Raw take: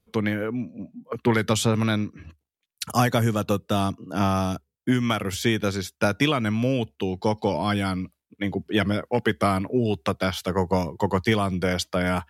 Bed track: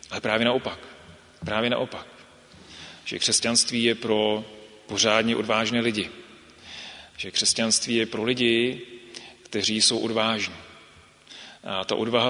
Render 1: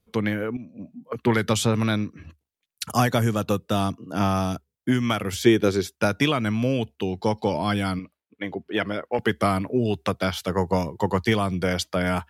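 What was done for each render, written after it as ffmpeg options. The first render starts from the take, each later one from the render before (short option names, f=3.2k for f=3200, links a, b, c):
-filter_complex "[0:a]asettb=1/sr,asplit=3[a][b][c];[a]atrim=end=5.464[d];[b]atrim=start=5.46:end=5.96,asetpts=PTS-STARTPTS,afade=t=in:d=0.004:c=qsin,afade=t=out:st=0.496:d=0.004:c=qsin,equalizer=f=370:t=o:w=0.77:g=10[e];[c]atrim=start=5.956[f];[d][e]acrossfade=d=0.004:c1=hsin:c2=qsin[g];[g][f]acrossfade=d=0.004:c1=qsin:c2=hsin,asettb=1/sr,asplit=3[h][i][j];[h]atrim=end=7.994[k];[i]atrim=start=7.99:end=9.19,asetpts=PTS-STARTPTS,afade=t=in:d=0.004:c=qsin,afade=t=out:st=1.196:d=0.004:c=qsin,bass=f=250:g=-11,treble=f=4k:g=-10[l];[j]atrim=start=9.186[m];[k][l]acrossfade=d=0.004:c1=hsin:c2=qsin[n];[n][m]acrossfade=d=0.004:c1=qsin:c2=hsin,asplit=2[o][p];[o]atrim=end=0.57,asetpts=PTS-STARTPTS,afade=t=out:st=0.566:d=0.004:c=hsin:silence=0.251189[q];[p]atrim=start=0.57,asetpts=PTS-STARTPTS,afade=t=in:d=0.47:c=qsin:silence=0.251189[r];[q][r]concat=n=2:v=0:a=1"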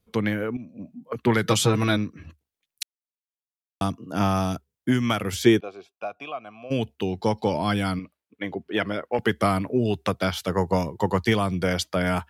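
-filter_complex "[0:a]asplit=3[a][b][c];[a]afade=t=out:st=1.43:d=0.02[d];[b]aecho=1:1:6.2:0.85,afade=t=in:st=1.43:d=0.02,afade=t=out:st=1.96:d=0.02[e];[c]afade=t=in:st=1.96:d=0.02[f];[d][e][f]amix=inputs=3:normalize=0,asplit=3[g][h][i];[g]afade=t=out:st=5.59:d=0.02[j];[h]asplit=3[k][l][m];[k]bandpass=f=730:t=q:w=8,volume=0dB[n];[l]bandpass=f=1.09k:t=q:w=8,volume=-6dB[o];[m]bandpass=f=2.44k:t=q:w=8,volume=-9dB[p];[n][o][p]amix=inputs=3:normalize=0,afade=t=in:st=5.59:d=0.02,afade=t=out:st=6.7:d=0.02[q];[i]afade=t=in:st=6.7:d=0.02[r];[j][q][r]amix=inputs=3:normalize=0,asplit=3[s][t][u];[s]atrim=end=2.83,asetpts=PTS-STARTPTS,afade=t=out:st=2.826:d=0.004:c=hsin[v];[t]atrim=start=2.83:end=3.81,asetpts=PTS-STARTPTS,volume=0[w];[u]atrim=start=3.81,asetpts=PTS-STARTPTS,afade=t=in:d=0.004:c=hsin[x];[v][w][x]concat=n=3:v=0:a=1"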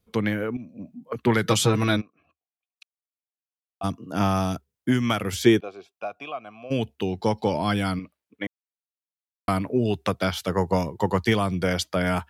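-filter_complex "[0:a]asplit=3[a][b][c];[a]afade=t=out:st=2:d=0.02[d];[b]asplit=3[e][f][g];[e]bandpass=f=730:t=q:w=8,volume=0dB[h];[f]bandpass=f=1.09k:t=q:w=8,volume=-6dB[i];[g]bandpass=f=2.44k:t=q:w=8,volume=-9dB[j];[h][i][j]amix=inputs=3:normalize=0,afade=t=in:st=2:d=0.02,afade=t=out:st=3.83:d=0.02[k];[c]afade=t=in:st=3.83:d=0.02[l];[d][k][l]amix=inputs=3:normalize=0,asplit=3[m][n][o];[m]atrim=end=8.47,asetpts=PTS-STARTPTS,afade=t=out:st=8.466:d=0.004:c=hsin[p];[n]atrim=start=8.47:end=9.48,asetpts=PTS-STARTPTS,volume=0[q];[o]atrim=start=9.48,asetpts=PTS-STARTPTS,afade=t=in:d=0.004:c=hsin[r];[p][q][r]concat=n=3:v=0:a=1"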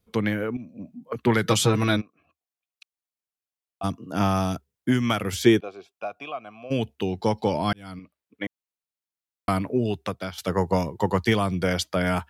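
-filter_complex "[0:a]asplit=3[a][b][c];[a]atrim=end=7.73,asetpts=PTS-STARTPTS,afade=t=out:st=7.726:d=0.004:c=hsin[d];[b]atrim=start=7.73:end=10.38,asetpts=PTS-STARTPTS,afade=t=in:d=0.71,afade=t=out:st=1.96:d=0.69:silence=0.266073[e];[c]atrim=start=10.38,asetpts=PTS-STARTPTS,afade=t=in:d=0.004:c=hsin:silence=0.266073[f];[d][e][f]concat=n=3:v=0:a=1"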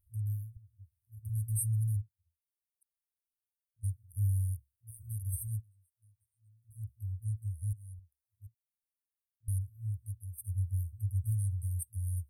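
-af "afftfilt=real='re*(1-between(b*sr/4096,110,8300))':imag='im*(1-between(b*sr/4096,110,8300))':win_size=4096:overlap=0.75"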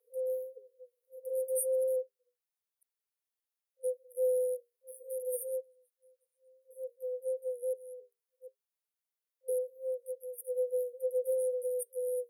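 -af "afreqshift=410"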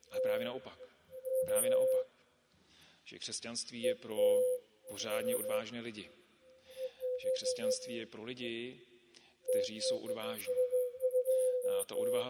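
-filter_complex "[1:a]volume=-20dB[a];[0:a][a]amix=inputs=2:normalize=0"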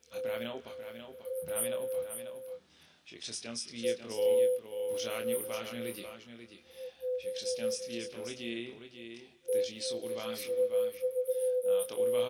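-filter_complex "[0:a]asplit=2[a][b];[b]adelay=26,volume=-5.5dB[c];[a][c]amix=inputs=2:normalize=0,aecho=1:1:540:0.376"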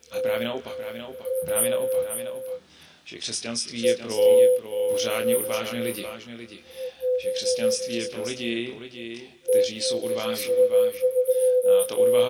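-af "volume=10.5dB"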